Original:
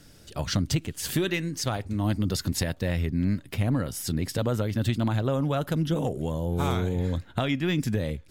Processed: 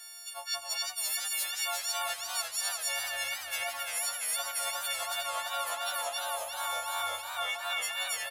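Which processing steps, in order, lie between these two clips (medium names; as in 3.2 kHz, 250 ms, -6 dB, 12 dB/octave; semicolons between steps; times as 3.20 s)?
partials quantised in pitch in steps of 4 st; elliptic high-pass 660 Hz, stop band 40 dB; loudspeakers at several distances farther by 59 m -10 dB, 94 m -1 dB; reverse; compression, threshold -32 dBFS, peak gain reduction 15 dB; reverse; modulated delay 347 ms, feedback 67%, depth 103 cents, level -7 dB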